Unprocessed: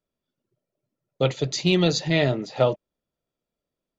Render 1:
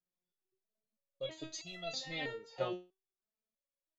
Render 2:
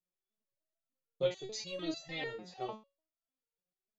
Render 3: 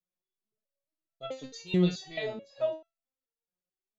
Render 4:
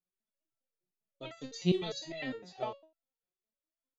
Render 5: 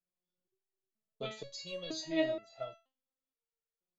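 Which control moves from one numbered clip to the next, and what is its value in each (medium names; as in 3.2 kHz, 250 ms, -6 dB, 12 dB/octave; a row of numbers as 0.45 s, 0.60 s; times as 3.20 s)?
resonator arpeggio, rate: 3.1 Hz, 6.7 Hz, 4.6 Hz, 9.9 Hz, 2.1 Hz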